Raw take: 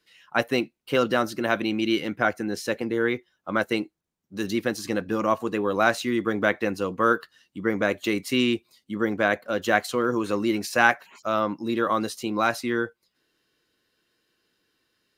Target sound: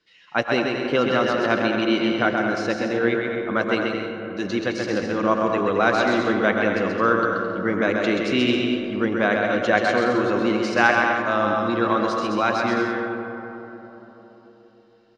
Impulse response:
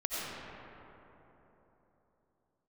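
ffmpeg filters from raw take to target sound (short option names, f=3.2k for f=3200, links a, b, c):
-filter_complex "[0:a]lowpass=f=6.2k:w=0.5412,lowpass=f=6.2k:w=1.3066,aecho=1:1:130|214.5|269.4|305.1|328.3:0.631|0.398|0.251|0.158|0.1,asplit=2[a][b];[1:a]atrim=start_sample=2205,asetrate=39690,aresample=44100,lowpass=6k[c];[b][c]afir=irnorm=-1:irlink=0,volume=-10.5dB[d];[a][d]amix=inputs=2:normalize=0,volume=-1dB"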